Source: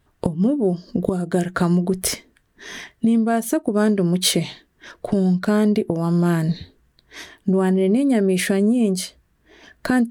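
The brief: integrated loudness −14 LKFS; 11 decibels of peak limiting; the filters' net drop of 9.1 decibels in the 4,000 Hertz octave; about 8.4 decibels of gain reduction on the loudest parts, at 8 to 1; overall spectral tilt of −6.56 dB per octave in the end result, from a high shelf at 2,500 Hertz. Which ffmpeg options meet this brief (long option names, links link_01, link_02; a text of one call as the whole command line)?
ffmpeg -i in.wav -af "highshelf=frequency=2500:gain=-8.5,equalizer=frequency=4000:width_type=o:gain=-4,acompressor=threshold=-26dB:ratio=8,volume=18.5dB,alimiter=limit=-4.5dB:level=0:latency=1" out.wav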